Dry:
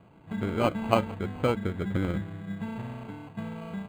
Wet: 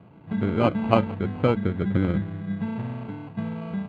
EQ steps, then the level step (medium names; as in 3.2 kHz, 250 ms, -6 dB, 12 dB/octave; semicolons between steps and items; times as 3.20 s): band-pass 100–4900 Hz; distance through air 59 m; bass shelf 260 Hz +7 dB; +2.5 dB